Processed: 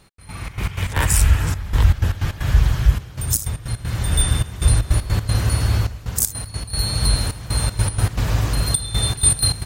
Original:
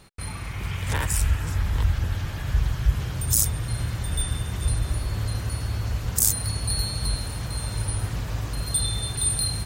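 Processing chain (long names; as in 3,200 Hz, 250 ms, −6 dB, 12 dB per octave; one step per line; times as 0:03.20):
automatic gain control gain up to 12 dB
gate pattern "x..xx.x.x.xxxxx" 156 BPM −12 dB
level −1 dB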